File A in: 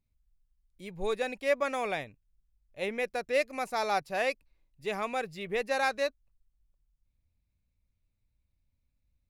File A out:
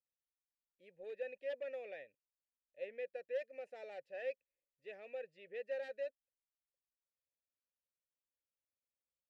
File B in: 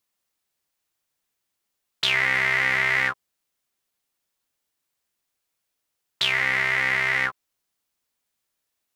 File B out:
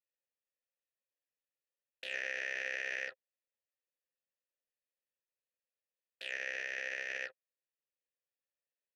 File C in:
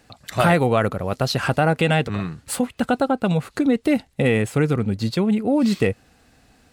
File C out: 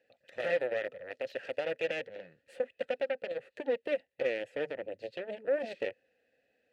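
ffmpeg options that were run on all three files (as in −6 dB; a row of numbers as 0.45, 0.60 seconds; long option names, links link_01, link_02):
-filter_complex "[0:a]aeval=exprs='0.596*(cos(1*acos(clip(val(0)/0.596,-1,1)))-cos(1*PI/2))+0.266*(cos(2*acos(clip(val(0)/0.596,-1,1)))-cos(2*PI/2))+0.0422*(cos(4*acos(clip(val(0)/0.596,-1,1)))-cos(4*PI/2))+0.133*(cos(7*acos(clip(val(0)/0.596,-1,1)))-cos(7*PI/2))+0.0106*(cos(8*acos(clip(val(0)/0.596,-1,1)))-cos(8*PI/2))':channel_layout=same,alimiter=limit=-9.5dB:level=0:latency=1:release=40,asplit=3[link_01][link_02][link_03];[link_01]bandpass=frequency=530:width_type=q:width=8,volume=0dB[link_04];[link_02]bandpass=frequency=1840:width_type=q:width=8,volume=-6dB[link_05];[link_03]bandpass=frequency=2480:width_type=q:width=8,volume=-9dB[link_06];[link_04][link_05][link_06]amix=inputs=3:normalize=0"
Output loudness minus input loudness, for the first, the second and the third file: −14.0, −17.5, −14.5 LU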